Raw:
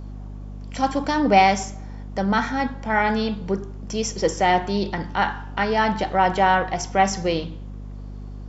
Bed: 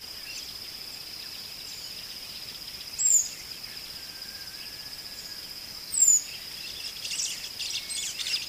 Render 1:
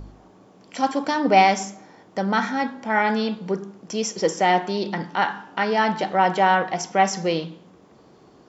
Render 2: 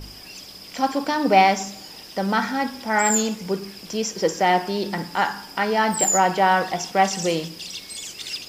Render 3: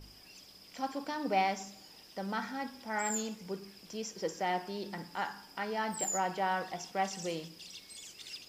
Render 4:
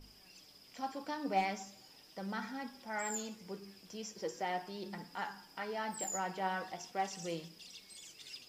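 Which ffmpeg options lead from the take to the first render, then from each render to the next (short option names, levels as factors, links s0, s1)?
-af "bandreject=f=50:t=h:w=4,bandreject=f=100:t=h:w=4,bandreject=f=150:t=h:w=4,bandreject=f=200:t=h:w=4,bandreject=f=250:t=h:w=4,bandreject=f=300:t=h:w=4"
-filter_complex "[1:a]volume=0.794[s0];[0:a][s0]amix=inputs=2:normalize=0"
-af "volume=0.188"
-af "asoftclip=type=hard:threshold=0.0944,flanger=delay=4:depth=6.9:regen=53:speed=0.39:shape=triangular"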